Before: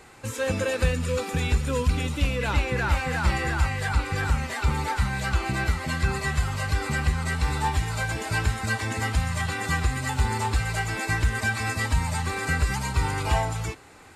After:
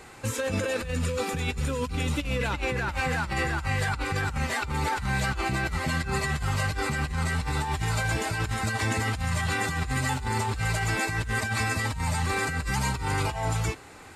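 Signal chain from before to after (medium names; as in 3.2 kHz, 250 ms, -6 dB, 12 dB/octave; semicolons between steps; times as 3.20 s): compressor with a negative ratio -28 dBFS, ratio -1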